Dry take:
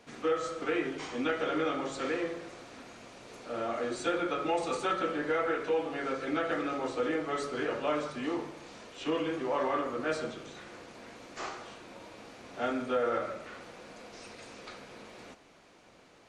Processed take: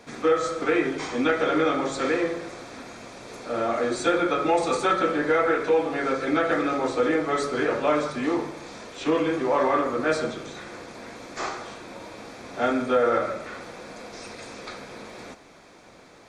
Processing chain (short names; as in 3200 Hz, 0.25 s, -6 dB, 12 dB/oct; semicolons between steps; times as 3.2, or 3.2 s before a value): notch 2900 Hz, Q 6.6; gain +8.5 dB